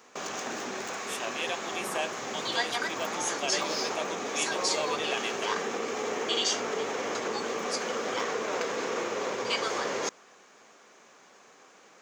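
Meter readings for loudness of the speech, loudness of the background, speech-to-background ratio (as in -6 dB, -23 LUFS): -36.0 LUFS, -31.0 LUFS, -5.0 dB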